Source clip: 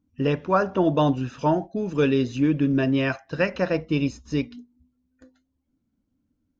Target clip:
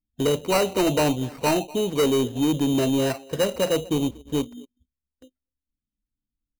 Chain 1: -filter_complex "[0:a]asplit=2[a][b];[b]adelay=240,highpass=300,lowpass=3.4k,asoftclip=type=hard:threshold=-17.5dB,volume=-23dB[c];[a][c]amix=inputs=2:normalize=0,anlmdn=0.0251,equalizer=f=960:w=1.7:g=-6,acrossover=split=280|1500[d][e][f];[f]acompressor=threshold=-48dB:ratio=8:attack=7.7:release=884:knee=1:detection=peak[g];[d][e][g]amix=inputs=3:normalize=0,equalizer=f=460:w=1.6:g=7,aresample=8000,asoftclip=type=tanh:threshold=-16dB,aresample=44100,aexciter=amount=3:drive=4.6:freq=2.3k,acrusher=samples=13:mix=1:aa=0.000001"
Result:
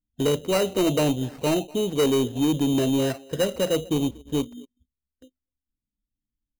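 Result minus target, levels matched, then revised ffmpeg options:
1000 Hz band -4.0 dB
-filter_complex "[0:a]asplit=2[a][b];[b]adelay=240,highpass=300,lowpass=3.4k,asoftclip=type=hard:threshold=-17.5dB,volume=-23dB[c];[a][c]amix=inputs=2:normalize=0,anlmdn=0.0251,equalizer=f=960:w=1.7:g=4,acrossover=split=280|1500[d][e][f];[f]acompressor=threshold=-48dB:ratio=8:attack=7.7:release=884:knee=1:detection=peak[g];[d][e][g]amix=inputs=3:normalize=0,equalizer=f=460:w=1.6:g=7,aresample=8000,asoftclip=type=tanh:threshold=-16dB,aresample=44100,aexciter=amount=3:drive=4.6:freq=2.3k,acrusher=samples=13:mix=1:aa=0.000001"

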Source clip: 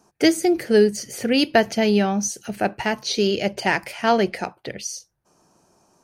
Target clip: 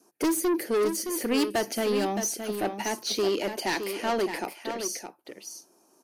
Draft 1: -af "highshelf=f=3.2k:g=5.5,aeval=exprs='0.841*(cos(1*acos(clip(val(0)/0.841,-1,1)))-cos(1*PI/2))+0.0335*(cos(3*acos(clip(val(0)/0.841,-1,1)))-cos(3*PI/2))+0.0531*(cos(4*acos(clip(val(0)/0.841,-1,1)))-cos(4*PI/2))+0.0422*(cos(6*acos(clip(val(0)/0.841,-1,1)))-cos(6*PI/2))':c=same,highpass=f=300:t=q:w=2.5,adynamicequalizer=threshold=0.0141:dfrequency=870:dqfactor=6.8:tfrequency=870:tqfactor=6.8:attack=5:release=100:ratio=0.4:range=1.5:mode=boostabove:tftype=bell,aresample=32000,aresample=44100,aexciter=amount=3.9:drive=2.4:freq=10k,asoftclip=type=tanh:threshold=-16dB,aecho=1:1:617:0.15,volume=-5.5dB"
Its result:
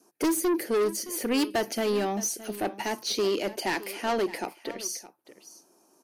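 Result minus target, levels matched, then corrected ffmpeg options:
echo-to-direct -8.5 dB
-af "highshelf=f=3.2k:g=5.5,aeval=exprs='0.841*(cos(1*acos(clip(val(0)/0.841,-1,1)))-cos(1*PI/2))+0.0335*(cos(3*acos(clip(val(0)/0.841,-1,1)))-cos(3*PI/2))+0.0531*(cos(4*acos(clip(val(0)/0.841,-1,1)))-cos(4*PI/2))+0.0422*(cos(6*acos(clip(val(0)/0.841,-1,1)))-cos(6*PI/2))':c=same,highpass=f=300:t=q:w=2.5,adynamicequalizer=threshold=0.0141:dfrequency=870:dqfactor=6.8:tfrequency=870:tqfactor=6.8:attack=5:release=100:ratio=0.4:range=1.5:mode=boostabove:tftype=bell,aresample=32000,aresample=44100,aexciter=amount=3.9:drive=2.4:freq=10k,asoftclip=type=tanh:threshold=-16dB,aecho=1:1:617:0.398,volume=-5.5dB"

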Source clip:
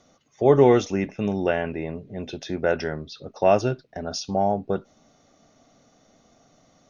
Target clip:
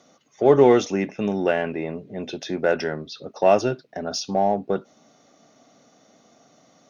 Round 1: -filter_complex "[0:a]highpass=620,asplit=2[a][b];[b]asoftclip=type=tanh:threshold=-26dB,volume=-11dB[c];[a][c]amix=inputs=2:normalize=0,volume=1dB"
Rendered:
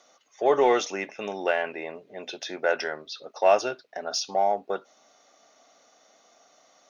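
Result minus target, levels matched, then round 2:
125 Hz band -15.5 dB
-filter_complex "[0:a]highpass=170,asplit=2[a][b];[b]asoftclip=type=tanh:threshold=-26dB,volume=-11dB[c];[a][c]amix=inputs=2:normalize=0,volume=1dB"

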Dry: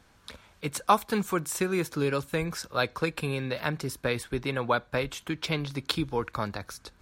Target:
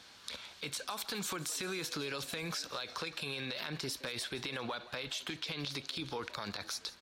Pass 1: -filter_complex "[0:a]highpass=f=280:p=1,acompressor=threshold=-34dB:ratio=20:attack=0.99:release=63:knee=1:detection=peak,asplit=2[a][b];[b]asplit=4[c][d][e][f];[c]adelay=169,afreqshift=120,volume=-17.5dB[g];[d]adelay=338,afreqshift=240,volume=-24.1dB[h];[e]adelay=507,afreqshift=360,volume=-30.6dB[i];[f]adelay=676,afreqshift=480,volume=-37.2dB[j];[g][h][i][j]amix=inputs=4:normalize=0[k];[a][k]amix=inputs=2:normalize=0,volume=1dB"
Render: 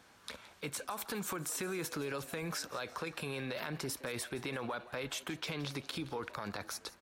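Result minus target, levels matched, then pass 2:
4000 Hz band -4.5 dB
-filter_complex "[0:a]highpass=f=280:p=1,equalizer=f=4.1k:w=0.91:g=13.5,acompressor=threshold=-34dB:ratio=20:attack=0.99:release=63:knee=1:detection=peak,asplit=2[a][b];[b]asplit=4[c][d][e][f];[c]adelay=169,afreqshift=120,volume=-17.5dB[g];[d]adelay=338,afreqshift=240,volume=-24.1dB[h];[e]adelay=507,afreqshift=360,volume=-30.6dB[i];[f]adelay=676,afreqshift=480,volume=-37.2dB[j];[g][h][i][j]amix=inputs=4:normalize=0[k];[a][k]amix=inputs=2:normalize=0,volume=1dB"

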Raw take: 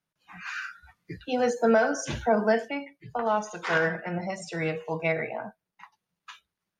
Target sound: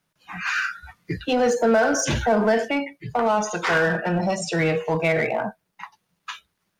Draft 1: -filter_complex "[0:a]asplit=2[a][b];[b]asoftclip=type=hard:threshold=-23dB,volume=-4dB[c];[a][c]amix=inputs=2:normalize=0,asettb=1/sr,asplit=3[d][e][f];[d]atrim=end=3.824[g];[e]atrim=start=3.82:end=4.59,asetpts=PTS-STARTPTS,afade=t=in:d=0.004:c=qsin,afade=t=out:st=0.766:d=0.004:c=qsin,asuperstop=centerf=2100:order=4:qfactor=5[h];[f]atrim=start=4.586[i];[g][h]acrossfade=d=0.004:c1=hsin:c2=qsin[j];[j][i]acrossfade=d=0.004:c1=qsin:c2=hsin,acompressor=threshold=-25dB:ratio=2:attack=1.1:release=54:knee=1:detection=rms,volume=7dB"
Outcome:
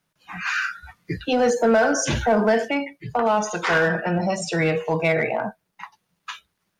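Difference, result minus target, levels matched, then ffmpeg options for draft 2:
hard clip: distortion -5 dB
-filter_complex "[0:a]asplit=2[a][b];[b]asoftclip=type=hard:threshold=-30dB,volume=-4dB[c];[a][c]amix=inputs=2:normalize=0,asettb=1/sr,asplit=3[d][e][f];[d]atrim=end=3.824[g];[e]atrim=start=3.82:end=4.59,asetpts=PTS-STARTPTS,afade=t=in:d=0.004:c=qsin,afade=t=out:st=0.766:d=0.004:c=qsin,asuperstop=centerf=2100:order=4:qfactor=5[h];[f]atrim=start=4.586[i];[g][h]acrossfade=d=0.004:c1=hsin:c2=qsin[j];[j][i]acrossfade=d=0.004:c1=qsin:c2=hsin,acompressor=threshold=-25dB:ratio=2:attack=1.1:release=54:knee=1:detection=rms,volume=7dB"

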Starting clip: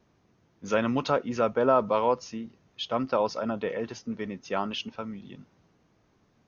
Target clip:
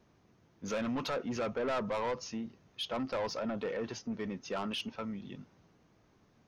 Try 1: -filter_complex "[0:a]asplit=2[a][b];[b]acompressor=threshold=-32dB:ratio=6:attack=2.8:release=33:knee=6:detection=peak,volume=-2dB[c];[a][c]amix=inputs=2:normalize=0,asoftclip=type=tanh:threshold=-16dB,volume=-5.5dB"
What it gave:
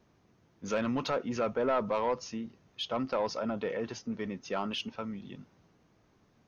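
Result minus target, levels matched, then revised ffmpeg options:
soft clip: distortion -7 dB
-filter_complex "[0:a]asplit=2[a][b];[b]acompressor=threshold=-32dB:ratio=6:attack=2.8:release=33:knee=6:detection=peak,volume=-2dB[c];[a][c]amix=inputs=2:normalize=0,asoftclip=type=tanh:threshold=-24dB,volume=-5.5dB"

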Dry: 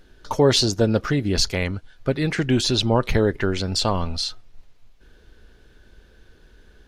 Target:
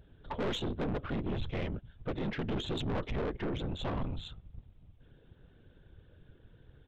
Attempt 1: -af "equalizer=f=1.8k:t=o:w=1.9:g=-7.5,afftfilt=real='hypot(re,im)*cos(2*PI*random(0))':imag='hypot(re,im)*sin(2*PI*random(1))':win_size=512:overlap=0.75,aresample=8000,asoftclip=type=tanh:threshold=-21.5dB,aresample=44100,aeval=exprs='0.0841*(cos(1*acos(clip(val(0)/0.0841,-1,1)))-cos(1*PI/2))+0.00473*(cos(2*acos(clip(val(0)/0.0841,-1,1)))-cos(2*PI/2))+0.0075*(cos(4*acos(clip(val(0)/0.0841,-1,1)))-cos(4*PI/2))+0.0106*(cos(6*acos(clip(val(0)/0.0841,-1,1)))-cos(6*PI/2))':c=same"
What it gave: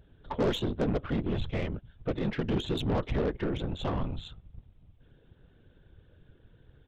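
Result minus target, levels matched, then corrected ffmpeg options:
soft clip: distortion -7 dB
-af "equalizer=f=1.8k:t=o:w=1.9:g=-7.5,afftfilt=real='hypot(re,im)*cos(2*PI*random(0))':imag='hypot(re,im)*sin(2*PI*random(1))':win_size=512:overlap=0.75,aresample=8000,asoftclip=type=tanh:threshold=-31dB,aresample=44100,aeval=exprs='0.0841*(cos(1*acos(clip(val(0)/0.0841,-1,1)))-cos(1*PI/2))+0.00473*(cos(2*acos(clip(val(0)/0.0841,-1,1)))-cos(2*PI/2))+0.0075*(cos(4*acos(clip(val(0)/0.0841,-1,1)))-cos(4*PI/2))+0.0106*(cos(6*acos(clip(val(0)/0.0841,-1,1)))-cos(6*PI/2))':c=same"

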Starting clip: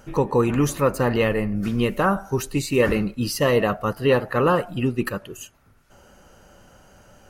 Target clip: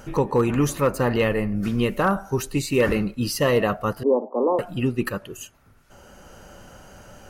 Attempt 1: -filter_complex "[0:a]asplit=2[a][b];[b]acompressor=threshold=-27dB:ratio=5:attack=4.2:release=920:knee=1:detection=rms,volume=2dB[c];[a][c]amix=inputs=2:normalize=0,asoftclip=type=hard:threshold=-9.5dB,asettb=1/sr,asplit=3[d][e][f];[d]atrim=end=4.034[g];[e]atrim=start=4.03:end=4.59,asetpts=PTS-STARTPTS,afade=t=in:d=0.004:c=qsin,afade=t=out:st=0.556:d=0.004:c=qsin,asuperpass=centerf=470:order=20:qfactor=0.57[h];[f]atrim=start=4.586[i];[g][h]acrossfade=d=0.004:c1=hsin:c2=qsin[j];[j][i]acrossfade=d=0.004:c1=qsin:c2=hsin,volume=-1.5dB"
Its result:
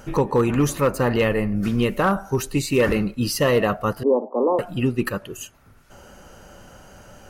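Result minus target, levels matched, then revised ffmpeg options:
compressor: peak gain reduction -9 dB
-filter_complex "[0:a]asplit=2[a][b];[b]acompressor=threshold=-38dB:ratio=5:attack=4.2:release=920:knee=1:detection=rms,volume=2dB[c];[a][c]amix=inputs=2:normalize=0,asoftclip=type=hard:threshold=-9.5dB,asettb=1/sr,asplit=3[d][e][f];[d]atrim=end=4.034[g];[e]atrim=start=4.03:end=4.59,asetpts=PTS-STARTPTS,afade=t=in:d=0.004:c=qsin,afade=t=out:st=0.556:d=0.004:c=qsin,asuperpass=centerf=470:order=20:qfactor=0.57[h];[f]atrim=start=4.586[i];[g][h]acrossfade=d=0.004:c1=hsin:c2=qsin[j];[j][i]acrossfade=d=0.004:c1=qsin:c2=hsin,volume=-1.5dB"

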